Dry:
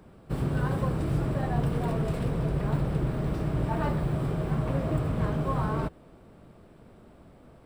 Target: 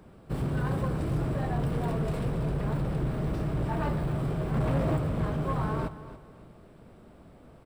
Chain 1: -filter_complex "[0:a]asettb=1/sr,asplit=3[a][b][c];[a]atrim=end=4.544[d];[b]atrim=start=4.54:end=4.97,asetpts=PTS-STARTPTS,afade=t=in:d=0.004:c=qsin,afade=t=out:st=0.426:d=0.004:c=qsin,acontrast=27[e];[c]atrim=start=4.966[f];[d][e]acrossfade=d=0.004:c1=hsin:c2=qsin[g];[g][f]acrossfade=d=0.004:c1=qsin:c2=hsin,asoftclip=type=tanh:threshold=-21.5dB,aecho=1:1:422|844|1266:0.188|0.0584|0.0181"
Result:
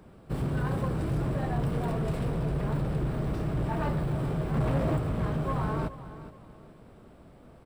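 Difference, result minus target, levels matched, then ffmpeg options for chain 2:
echo 0.14 s late
-filter_complex "[0:a]asettb=1/sr,asplit=3[a][b][c];[a]atrim=end=4.544[d];[b]atrim=start=4.54:end=4.97,asetpts=PTS-STARTPTS,afade=t=in:d=0.004:c=qsin,afade=t=out:st=0.426:d=0.004:c=qsin,acontrast=27[e];[c]atrim=start=4.966[f];[d][e]acrossfade=d=0.004:c1=hsin:c2=qsin[g];[g][f]acrossfade=d=0.004:c1=qsin:c2=hsin,asoftclip=type=tanh:threshold=-21.5dB,aecho=1:1:282|564|846:0.188|0.0584|0.0181"

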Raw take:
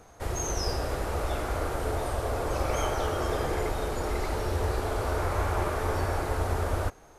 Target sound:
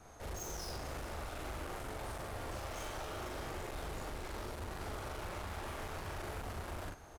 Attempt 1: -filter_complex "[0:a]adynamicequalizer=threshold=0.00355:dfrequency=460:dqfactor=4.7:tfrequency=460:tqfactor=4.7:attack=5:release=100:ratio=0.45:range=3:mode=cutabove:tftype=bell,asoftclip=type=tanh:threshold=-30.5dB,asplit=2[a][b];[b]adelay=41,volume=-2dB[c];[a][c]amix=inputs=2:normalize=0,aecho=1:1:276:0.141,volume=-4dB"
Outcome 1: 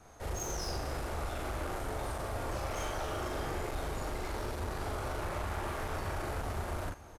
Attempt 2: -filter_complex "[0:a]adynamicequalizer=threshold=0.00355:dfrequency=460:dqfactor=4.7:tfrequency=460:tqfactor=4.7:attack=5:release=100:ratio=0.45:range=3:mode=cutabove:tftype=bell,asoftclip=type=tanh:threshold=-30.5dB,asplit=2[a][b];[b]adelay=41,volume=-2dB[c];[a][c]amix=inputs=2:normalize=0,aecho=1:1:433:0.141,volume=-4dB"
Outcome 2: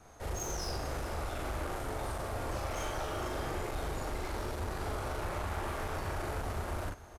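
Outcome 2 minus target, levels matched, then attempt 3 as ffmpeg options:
soft clip: distortion -4 dB
-filter_complex "[0:a]adynamicequalizer=threshold=0.00355:dfrequency=460:dqfactor=4.7:tfrequency=460:tqfactor=4.7:attack=5:release=100:ratio=0.45:range=3:mode=cutabove:tftype=bell,asoftclip=type=tanh:threshold=-39dB,asplit=2[a][b];[b]adelay=41,volume=-2dB[c];[a][c]amix=inputs=2:normalize=0,aecho=1:1:433:0.141,volume=-4dB"

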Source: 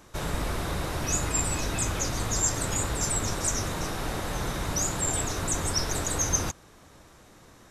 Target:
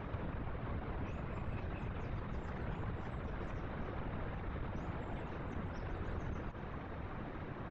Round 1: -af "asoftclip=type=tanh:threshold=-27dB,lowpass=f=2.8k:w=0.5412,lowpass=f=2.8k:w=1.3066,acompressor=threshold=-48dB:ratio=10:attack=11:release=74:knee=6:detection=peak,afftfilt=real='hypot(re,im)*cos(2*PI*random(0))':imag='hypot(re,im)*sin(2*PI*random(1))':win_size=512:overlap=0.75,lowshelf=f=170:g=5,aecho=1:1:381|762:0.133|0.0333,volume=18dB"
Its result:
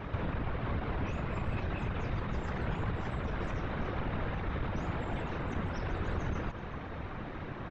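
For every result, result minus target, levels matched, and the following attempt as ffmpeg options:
compressor: peak gain reduction -7 dB; 4000 Hz band +3.0 dB
-af "asoftclip=type=tanh:threshold=-27dB,lowpass=f=2.8k:w=0.5412,lowpass=f=2.8k:w=1.3066,acompressor=threshold=-56dB:ratio=10:attack=11:release=74:knee=6:detection=peak,afftfilt=real='hypot(re,im)*cos(2*PI*random(0))':imag='hypot(re,im)*sin(2*PI*random(1))':win_size=512:overlap=0.75,lowshelf=f=170:g=5,aecho=1:1:381|762:0.133|0.0333,volume=18dB"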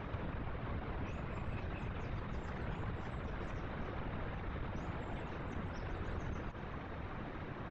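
4000 Hz band +3.0 dB
-af "asoftclip=type=tanh:threshold=-27dB,lowpass=f=2.8k:w=0.5412,lowpass=f=2.8k:w=1.3066,highshelf=f=2.1k:g=-5,acompressor=threshold=-56dB:ratio=10:attack=11:release=74:knee=6:detection=peak,afftfilt=real='hypot(re,im)*cos(2*PI*random(0))':imag='hypot(re,im)*sin(2*PI*random(1))':win_size=512:overlap=0.75,lowshelf=f=170:g=5,aecho=1:1:381|762:0.133|0.0333,volume=18dB"

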